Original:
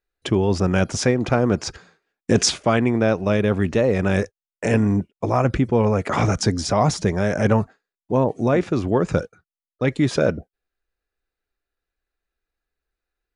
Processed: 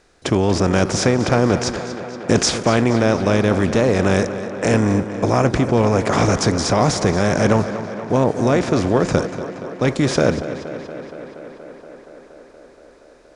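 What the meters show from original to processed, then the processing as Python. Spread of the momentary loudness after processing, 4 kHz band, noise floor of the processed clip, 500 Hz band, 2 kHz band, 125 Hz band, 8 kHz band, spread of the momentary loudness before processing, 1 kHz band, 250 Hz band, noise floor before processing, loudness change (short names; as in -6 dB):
12 LU, +3.5 dB, -48 dBFS, +3.0 dB, +3.5 dB, +2.0 dB, +3.5 dB, 6 LU, +4.0 dB, +3.0 dB, under -85 dBFS, +2.5 dB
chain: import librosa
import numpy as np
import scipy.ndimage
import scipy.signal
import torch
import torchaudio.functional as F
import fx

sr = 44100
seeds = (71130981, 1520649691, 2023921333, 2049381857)

y = fx.bin_compress(x, sr, power=0.6)
y = fx.echo_tape(y, sr, ms=236, feedback_pct=86, wet_db=-10.0, lp_hz=4600.0, drive_db=6.0, wow_cents=12)
y = y * 10.0 ** (-1.0 / 20.0)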